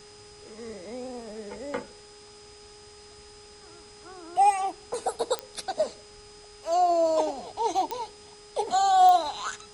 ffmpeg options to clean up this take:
-af "adeclick=t=4,bandreject=f=415.6:t=h:w=4,bandreject=f=831.2:t=h:w=4,bandreject=f=1.2468k:t=h:w=4,bandreject=f=5k:w=30,afftdn=nr=21:nf=-50"

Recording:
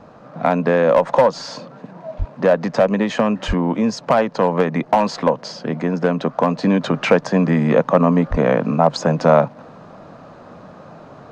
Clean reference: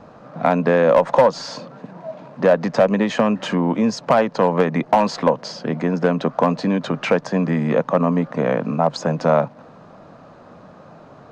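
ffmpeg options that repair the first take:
-filter_complex "[0:a]asplit=3[a][b][c];[a]afade=t=out:st=2.18:d=0.02[d];[b]highpass=f=140:w=0.5412,highpass=f=140:w=1.3066,afade=t=in:st=2.18:d=0.02,afade=t=out:st=2.3:d=0.02[e];[c]afade=t=in:st=2.3:d=0.02[f];[d][e][f]amix=inputs=3:normalize=0,asplit=3[g][h][i];[g]afade=t=out:st=3.47:d=0.02[j];[h]highpass=f=140:w=0.5412,highpass=f=140:w=1.3066,afade=t=in:st=3.47:d=0.02,afade=t=out:st=3.59:d=0.02[k];[i]afade=t=in:st=3.59:d=0.02[l];[j][k][l]amix=inputs=3:normalize=0,asplit=3[m][n][o];[m]afade=t=out:st=8.3:d=0.02[p];[n]highpass=f=140:w=0.5412,highpass=f=140:w=1.3066,afade=t=in:st=8.3:d=0.02,afade=t=out:st=8.42:d=0.02[q];[o]afade=t=in:st=8.42:d=0.02[r];[p][q][r]amix=inputs=3:normalize=0,asetnsamples=n=441:p=0,asendcmd='6.63 volume volume -3.5dB',volume=0dB"

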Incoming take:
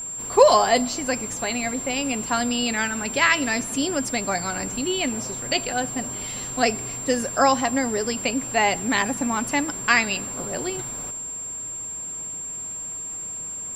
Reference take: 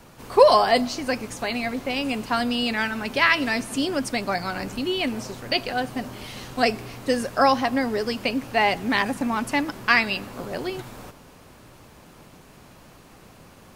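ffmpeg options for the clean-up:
-af "bandreject=f=7.4k:w=30"

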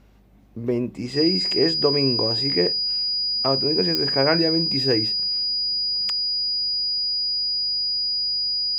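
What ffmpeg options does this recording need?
-af "adeclick=t=4,bandreject=f=50.6:t=h:w=4,bandreject=f=101.2:t=h:w=4,bandreject=f=151.8:t=h:w=4,bandreject=f=202.4:t=h:w=4,bandreject=f=4.9k:w=30"

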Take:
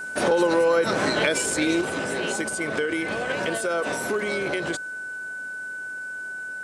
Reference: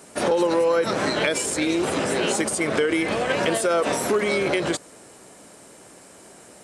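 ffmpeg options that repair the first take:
-af "bandreject=f=1.5k:w=30,asetnsamples=n=441:p=0,asendcmd='1.81 volume volume 5dB',volume=0dB"

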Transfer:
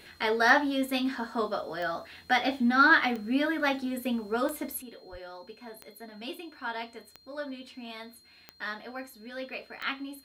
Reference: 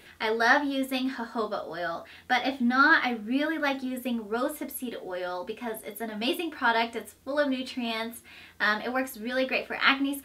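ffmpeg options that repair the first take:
-filter_complex "[0:a]adeclick=t=4,bandreject=f=4.2k:w=30,asplit=3[a][b][c];[a]afade=t=out:st=5.11:d=0.02[d];[b]highpass=f=140:w=0.5412,highpass=f=140:w=1.3066,afade=t=in:st=5.11:d=0.02,afade=t=out:st=5.23:d=0.02[e];[c]afade=t=in:st=5.23:d=0.02[f];[d][e][f]amix=inputs=3:normalize=0,asetnsamples=n=441:p=0,asendcmd='4.82 volume volume 11dB',volume=0dB"

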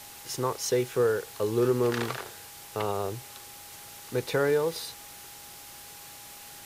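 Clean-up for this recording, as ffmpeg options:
-af "bandreject=f=820:w=30,afwtdn=0.0056"

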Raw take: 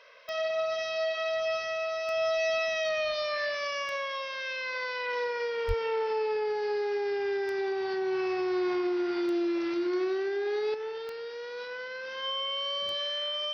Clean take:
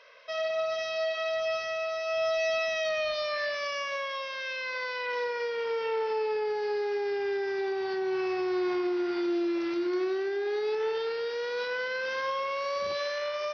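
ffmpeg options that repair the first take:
-filter_complex "[0:a]adeclick=t=4,bandreject=f=3.1k:w=30,asplit=3[a][b][c];[a]afade=t=out:st=5.67:d=0.02[d];[b]highpass=f=140:w=0.5412,highpass=f=140:w=1.3066,afade=t=in:st=5.67:d=0.02,afade=t=out:st=5.79:d=0.02[e];[c]afade=t=in:st=5.79:d=0.02[f];[d][e][f]amix=inputs=3:normalize=0,asetnsamples=n=441:p=0,asendcmd='10.74 volume volume 6.5dB',volume=0dB"

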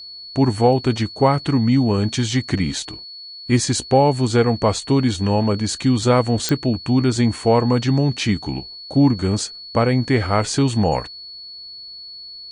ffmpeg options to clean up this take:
-af "adeclick=t=4,bandreject=f=4.4k:w=30"

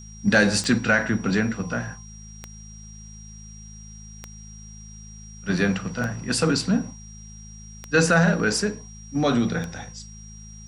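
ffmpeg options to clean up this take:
-af "adeclick=t=4,bandreject=f=53.3:t=h:w=4,bandreject=f=106.6:t=h:w=4,bandreject=f=159.9:t=h:w=4,bandreject=f=213.2:t=h:w=4,bandreject=f=5.7k:w=30,agate=range=-21dB:threshold=-34dB"

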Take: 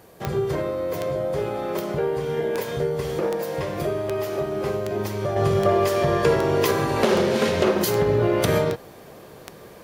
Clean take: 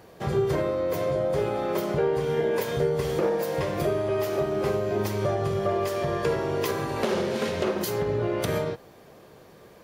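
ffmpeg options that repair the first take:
-af "adeclick=t=4,agate=range=-21dB:threshold=-35dB,asetnsamples=n=441:p=0,asendcmd='5.36 volume volume -6.5dB',volume=0dB"

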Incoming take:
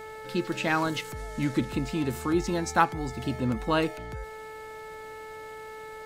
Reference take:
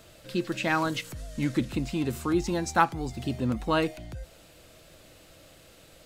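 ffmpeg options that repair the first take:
-af "bandreject=f=436.3:t=h:w=4,bandreject=f=872.6:t=h:w=4,bandreject=f=1.3089k:t=h:w=4,bandreject=f=1.7452k:t=h:w=4,bandreject=f=2.1815k:t=h:w=4"

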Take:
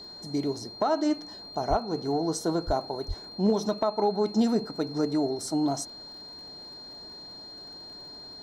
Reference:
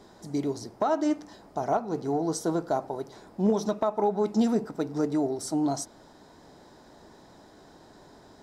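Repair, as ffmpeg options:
-filter_complex "[0:a]adeclick=t=4,bandreject=f=4.2k:w=30,asplit=3[a][b][c];[a]afade=t=out:st=1.69:d=0.02[d];[b]highpass=f=140:w=0.5412,highpass=f=140:w=1.3066,afade=t=in:st=1.69:d=0.02,afade=t=out:st=1.81:d=0.02[e];[c]afade=t=in:st=1.81:d=0.02[f];[d][e][f]amix=inputs=3:normalize=0,asplit=3[g][h][i];[g]afade=t=out:st=2.66:d=0.02[j];[h]highpass=f=140:w=0.5412,highpass=f=140:w=1.3066,afade=t=in:st=2.66:d=0.02,afade=t=out:st=2.78:d=0.02[k];[i]afade=t=in:st=2.78:d=0.02[l];[j][k][l]amix=inputs=3:normalize=0,asplit=3[m][n][o];[m]afade=t=out:st=3.07:d=0.02[p];[n]highpass=f=140:w=0.5412,highpass=f=140:w=1.3066,afade=t=in:st=3.07:d=0.02,afade=t=out:st=3.19:d=0.02[q];[o]afade=t=in:st=3.19:d=0.02[r];[p][q][r]amix=inputs=3:normalize=0"

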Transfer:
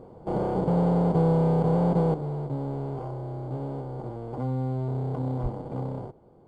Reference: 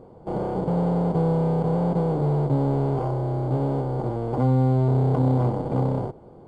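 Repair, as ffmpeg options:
-filter_complex "[0:a]asplit=3[a][b][c];[a]afade=t=out:st=5.42:d=0.02[d];[b]highpass=f=140:w=0.5412,highpass=f=140:w=1.3066,afade=t=in:st=5.42:d=0.02,afade=t=out:st=5.54:d=0.02[e];[c]afade=t=in:st=5.54:d=0.02[f];[d][e][f]amix=inputs=3:normalize=0,asetnsamples=n=441:p=0,asendcmd='2.14 volume volume 9dB',volume=0dB"

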